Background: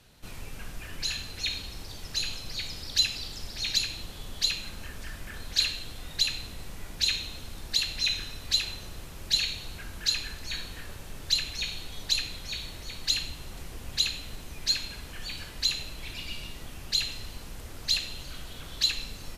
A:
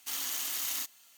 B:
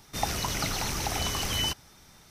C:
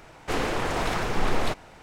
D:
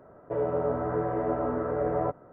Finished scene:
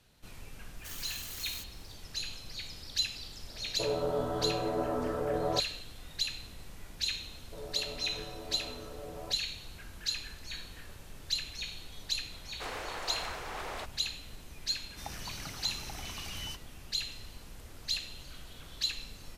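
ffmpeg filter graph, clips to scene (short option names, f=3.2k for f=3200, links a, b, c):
-filter_complex "[4:a]asplit=2[a][b];[0:a]volume=-7dB[c];[3:a]highpass=540[d];[2:a]equalizer=f=470:w=1.3:g=-4[e];[1:a]atrim=end=1.17,asetpts=PTS-STARTPTS,volume=-9dB,afade=t=in:d=0.004:c=hsin,afade=t=out:st=1.166:d=0.004:c=hsin,adelay=780[f];[a]atrim=end=2.32,asetpts=PTS-STARTPTS,volume=-4dB,afade=t=in:d=0.004:c=hsin,afade=t=out:st=2.316:d=0.004:c=hsin,adelay=153909S[g];[b]atrim=end=2.32,asetpts=PTS-STARTPTS,volume=-17dB,afade=t=in:d=0.004:c=hsin,afade=t=out:st=2.316:d=0.004:c=hsin,adelay=318402S[h];[d]atrim=end=1.82,asetpts=PTS-STARTPTS,volume=-10dB,afade=t=in:d=0.004:c=hsin,afade=t=out:st=1.816:d=0.004:c=hsin,adelay=12320[i];[e]atrim=end=2.3,asetpts=PTS-STARTPTS,volume=-13dB,afade=t=in:d=0.004:c=hsin,afade=t=out:st=2.296:d=0.004:c=hsin,adelay=14830[j];[c][f][g][h][i][j]amix=inputs=6:normalize=0"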